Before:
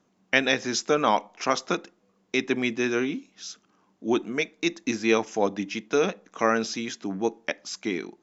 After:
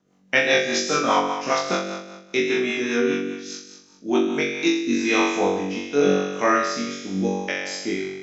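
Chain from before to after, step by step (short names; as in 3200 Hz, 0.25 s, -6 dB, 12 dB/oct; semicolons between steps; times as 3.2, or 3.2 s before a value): flutter echo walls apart 3.6 m, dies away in 1.2 s; rotary speaker horn 5 Hz, later 0.85 Hz, at 4.15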